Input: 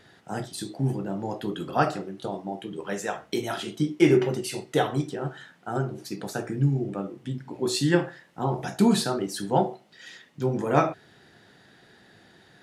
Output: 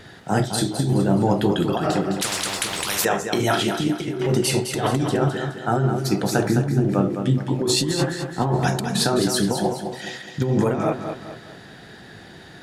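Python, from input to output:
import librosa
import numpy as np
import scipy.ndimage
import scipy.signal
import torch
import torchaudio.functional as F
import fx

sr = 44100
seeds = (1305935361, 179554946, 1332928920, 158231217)

p1 = fx.over_compress(x, sr, threshold_db=-29.0, ratio=-1.0)
p2 = fx.low_shelf(p1, sr, hz=120.0, db=7.0)
p3 = p2 + fx.echo_feedback(p2, sr, ms=210, feedback_pct=41, wet_db=-7.5, dry=0)
p4 = fx.spectral_comp(p3, sr, ratio=10.0, at=(2.21, 3.05))
y = p4 * 10.0 ** (7.0 / 20.0)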